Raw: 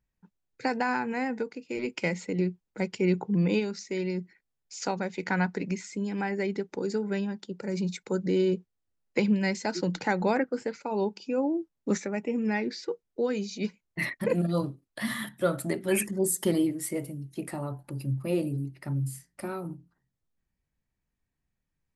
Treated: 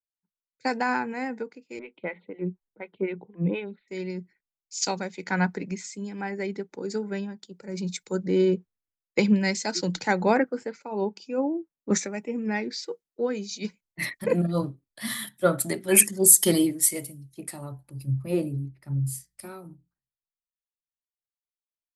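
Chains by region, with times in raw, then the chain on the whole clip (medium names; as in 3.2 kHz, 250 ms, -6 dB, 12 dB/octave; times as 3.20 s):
1.79–3.88 s: steep low-pass 3.8 kHz 96 dB/octave + lamp-driven phase shifter 4.1 Hz
whole clip: treble shelf 3.6 kHz +6.5 dB; band-stop 2.8 kHz, Q 19; three bands expanded up and down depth 100%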